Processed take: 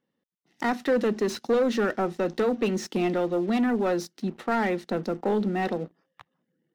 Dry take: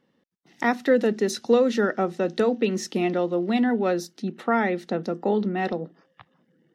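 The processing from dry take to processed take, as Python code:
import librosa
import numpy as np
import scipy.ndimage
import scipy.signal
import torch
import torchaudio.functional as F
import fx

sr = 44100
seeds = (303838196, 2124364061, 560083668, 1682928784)

y = fx.leveller(x, sr, passes=2)
y = fx.slew_limit(y, sr, full_power_hz=230.0)
y = y * 10.0 ** (-7.5 / 20.0)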